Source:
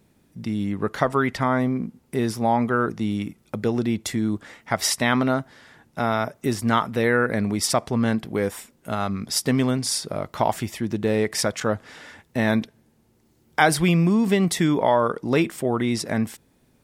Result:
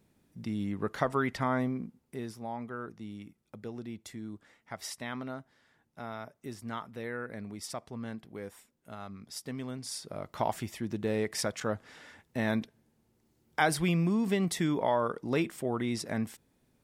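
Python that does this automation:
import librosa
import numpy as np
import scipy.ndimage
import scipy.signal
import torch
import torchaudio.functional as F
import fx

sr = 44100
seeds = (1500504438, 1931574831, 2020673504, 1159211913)

y = fx.gain(x, sr, db=fx.line((1.6, -8.0), (2.44, -18.0), (9.61, -18.0), (10.38, -9.0)))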